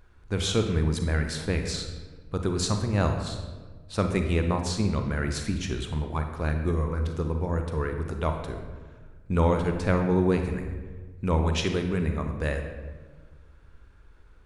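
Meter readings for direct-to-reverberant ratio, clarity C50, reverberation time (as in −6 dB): 5.0 dB, 6.5 dB, 1.4 s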